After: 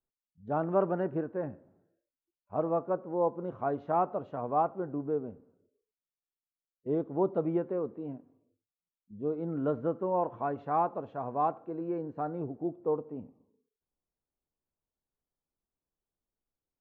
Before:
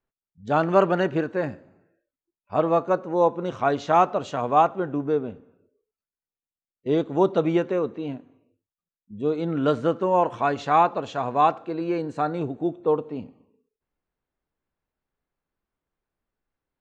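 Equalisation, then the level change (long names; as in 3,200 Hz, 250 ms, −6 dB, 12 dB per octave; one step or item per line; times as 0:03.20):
low-pass filter 1,000 Hz 12 dB per octave
−8.0 dB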